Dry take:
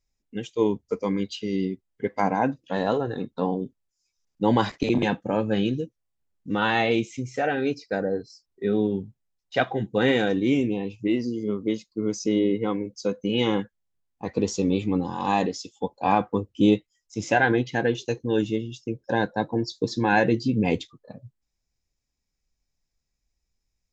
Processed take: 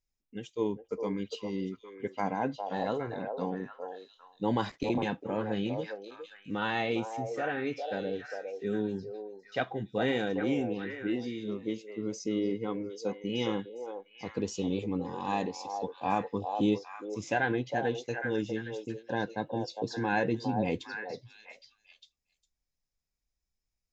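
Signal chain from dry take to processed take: delay with a stepping band-pass 0.406 s, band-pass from 620 Hz, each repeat 1.4 oct, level -2.5 dB; gain -8.5 dB

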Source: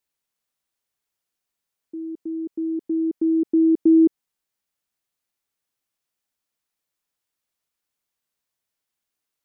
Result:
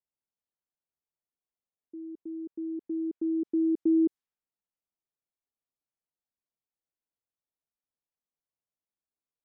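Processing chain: low-pass opened by the level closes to 890 Hz, open at -15 dBFS; gain -9 dB

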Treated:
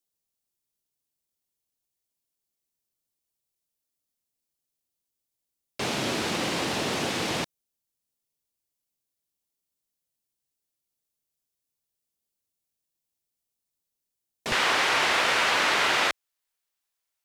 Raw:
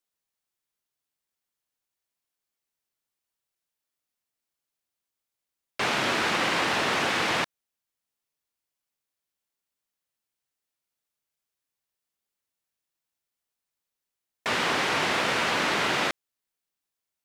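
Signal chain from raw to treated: bell 1500 Hz -11.5 dB 2.4 oct, from 14.52 s 170 Hz; gain +3.5 dB

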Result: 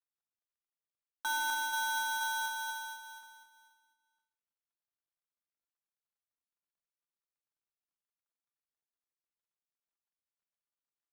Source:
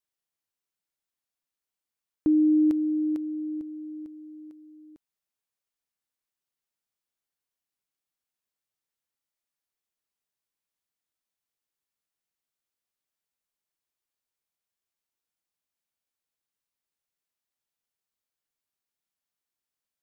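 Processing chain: median filter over 41 samples; comb 5.9 ms, depth 39%; on a send: feedback echo 0.857 s, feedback 25%, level -7.5 dB; on the sum: shoebox room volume 2900 m³, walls furnished, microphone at 1.1 m; tempo 1.8×; reverse; compressor 8:1, threshold -34 dBFS, peak gain reduction 14 dB; reverse; polarity switched at an audio rate 1200 Hz; gain +1.5 dB

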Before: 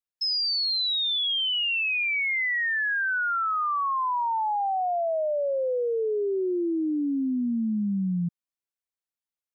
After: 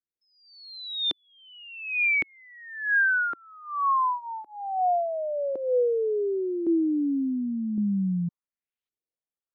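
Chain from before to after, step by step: rotary speaker horn 1.2 Hz; LFO low-pass saw up 0.9 Hz 320–3800 Hz

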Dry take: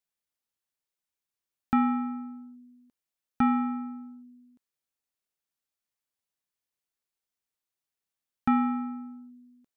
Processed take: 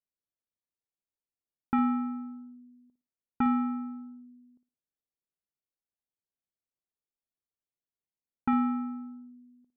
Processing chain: flutter echo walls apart 9.7 m, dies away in 0.28 s; low-pass opened by the level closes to 590 Hz, open at -25.5 dBFS; gain -3 dB

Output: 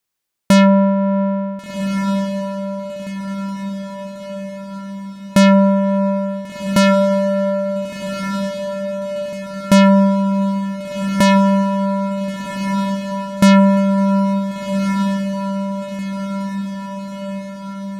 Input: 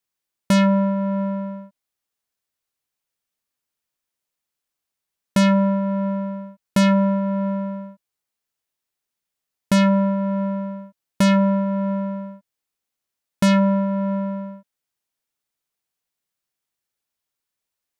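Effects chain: dynamic EQ 690 Hz, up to +3 dB, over -39 dBFS, Q 2.6; diffused feedback echo 1.476 s, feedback 59%, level -7 dB; gain +5.5 dB

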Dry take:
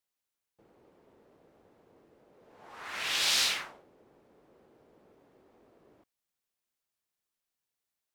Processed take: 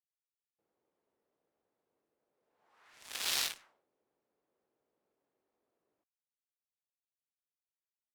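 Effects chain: added harmonics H 2 -19 dB, 3 -11 dB, 5 -37 dB, 7 -27 dB, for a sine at -14.5 dBFS; low shelf 290 Hz -9 dB; gain +1.5 dB

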